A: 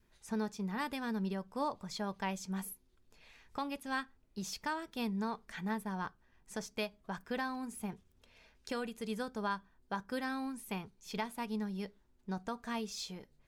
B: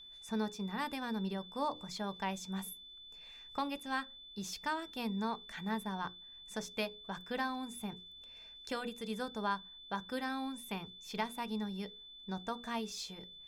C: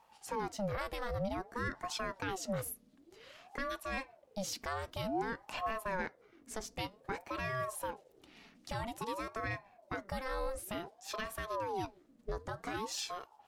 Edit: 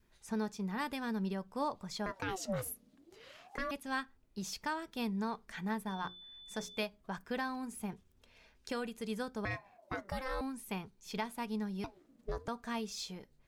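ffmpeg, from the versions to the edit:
-filter_complex "[2:a]asplit=3[s0][s1][s2];[0:a]asplit=5[s3][s4][s5][s6][s7];[s3]atrim=end=2.062[s8];[s0]atrim=start=2.058:end=3.712[s9];[s4]atrim=start=3.708:end=5.872[s10];[1:a]atrim=start=5.868:end=6.832[s11];[s5]atrim=start=6.828:end=9.452[s12];[s1]atrim=start=9.448:end=10.412[s13];[s6]atrim=start=10.408:end=11.842[s14];[s2]atrim=start=11.838:end=12.482[s15];[s7]atrim=start=12.478[s16];[s8][s9]acrossfade=d=0.004:c1=hsin:c2=hsin[s17];[s17][s10]acrossfade=d=0.004:c1=hsin:c2=hsin[s18];[s18][s11]acrossfade=d=0.004:c1=hsin:c2=hsin[s19];[s19][s12]acrossfade=d=0.004:c1=hsin:c2=hsin[s20];[s20][s13]acrossfade=d=0.004:c1=hsin:c2=hsin[s21];[s21][s14]acrossfade=d=0.004:c1=hsin:c2=hsin[s22];[s22][s15]acrossfade=d=0.004:c1=hsin:c2=hsin[s23];[s23][s16]acrossfade=d=0.004:c1=hsin:c2=hsin"

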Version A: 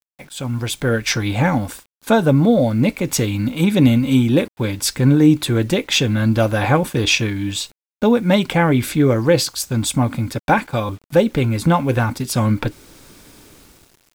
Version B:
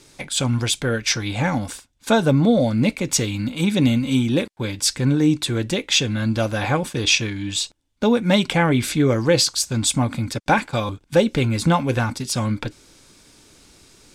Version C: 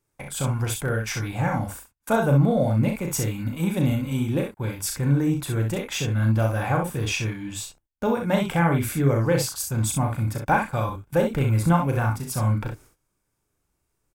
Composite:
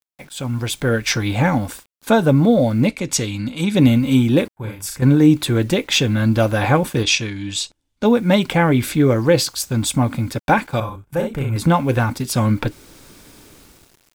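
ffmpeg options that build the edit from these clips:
-filter_complex "[1:a]asplit=2[s0][s1];[2:a]asplit=2[s2][s3];[0:a]asplit=5[s4][s5][s6][s7][s8];[s4]atrim=end=2.882[s9];[s0]atrim=start=2.878:end=3.752[s10];[s5]atrim=start=3.748:end=4.562[s11];[s2]atrim=start=4.558:end=5.022[s12];[s6]atrim=start=5.018:end=7.032[s13];[s1]atrim=start=7.028:end=8.052[s14];[s7]atrim=start=8.048:end=10.802[s15];[s3]atrim=start=10.798:end=11.562[s16];[s8]atrim=start=11.558[s17];[s9][s10]acrossfade=d=0.004:c1=hsin:c2=hsin[s18];[s18][s11]acrossfade=d=0.004:c1=hsin:c2=hsin[s19];[s19][s12]acrossfade=d=0.004:c1=hsin:c2=hsin[s20];[s20][s13]acrossfade=d=0.004:c1=hsin:c2=hsin[s21];[s21][s14]acrossfade=d=0.004:c1=hsin:c2=hsin[s22];[s22][s15]acrossfade=d=0.004:c1=hsin:c2=hsin[s23];[s23][s16]acrossfade=d=0.004:c1=hsin:c2=hsin[s24];[s24][s17]acrossfade=d=0.004:c1=hsin:c2=hsin"

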